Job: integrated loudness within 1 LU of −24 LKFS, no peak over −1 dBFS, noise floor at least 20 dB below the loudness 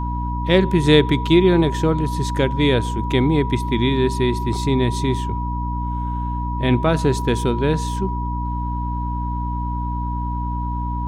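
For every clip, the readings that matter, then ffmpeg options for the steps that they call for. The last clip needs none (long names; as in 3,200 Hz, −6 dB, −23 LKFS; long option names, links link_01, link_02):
mains hum 60 Hz; hum harmonics up to 300 Hz; level of the hum −22 dBFS; interfering tone 970 Hz; level of the tone −27 dBFS; integrated loudness −20.0 LKFS; sample peak −1.0 dBFS; target loudness −24.0 LKFS
→ -af "bandreject=frequency=60:width_type=h:width=6,bandreject=frequency=120:width_type=h:width=6,bandreject=frequency=180:width_type=h:width=6,bandreject=frequency=240:width_type=h:width=6,bandreject=frequency=300:width_type=h:width=6"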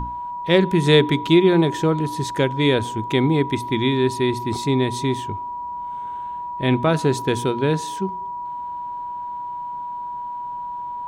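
mains hum none found; interfering tone 970 Hz; level of the tone −27 dBFS
→ -af "bandreject=frequency=970:width=30"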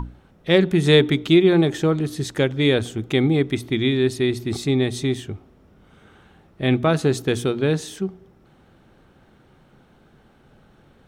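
interfering tone none found; integrated loudness −20.0 LKFS; sample peak −3.5 dBFS; target loudness −24.0 LKFS
→ -af "volume=-4dB"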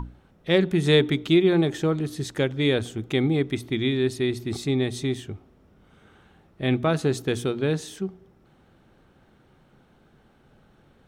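integrated loudness −24.0 LKFS; sample peak −7.5 dBFS; background noise floor −59 dBFS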